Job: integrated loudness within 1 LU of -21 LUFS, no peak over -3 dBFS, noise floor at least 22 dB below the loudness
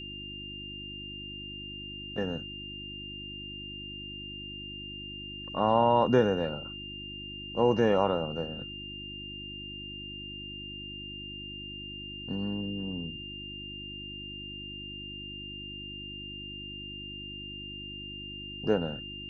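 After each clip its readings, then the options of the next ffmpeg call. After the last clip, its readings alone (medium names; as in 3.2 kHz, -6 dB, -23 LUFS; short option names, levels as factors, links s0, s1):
hum 50 Hz; highest harmonic 350 Hz; hum level -43 dBFS; steady tone 2.8 kHz; tone level -40 dBFS; loudness -33.5 LUFS; peak level -10.5 dBFS; loudness target -21.0 LUFS
-> -af "bandreject=f=50:t=h:w=4,bandreject=f=100:t=h:w=4,bandreject=f=150:t=h:w=4,bandreject=f=200:t=h:w=4,bandreject=f=250:t=h:w=4,bandreject=f=300:t=h:w=4,bandreject=f=350:t=h:w=4"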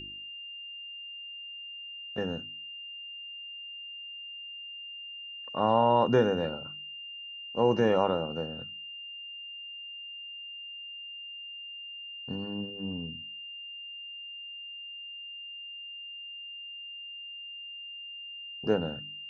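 hum not found; steady tone 2.8 kHz; tone level -40 dBFS
-> -af "bandreject=f=2800:w=30"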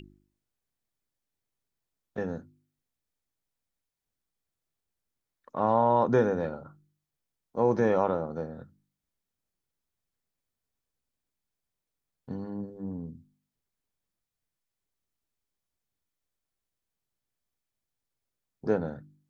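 steady tone not found; loudness -28.5 LUFS; peak level -11.5 dBFS; loudness target -21.0 LUFS
-> -af "volume=2.37"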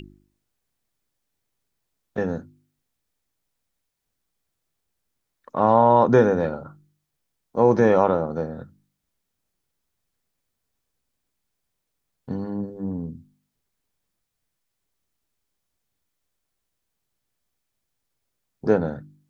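loudness -21.0 LUFS; peak level -4.0 dBFS; noise floor -79 dBFS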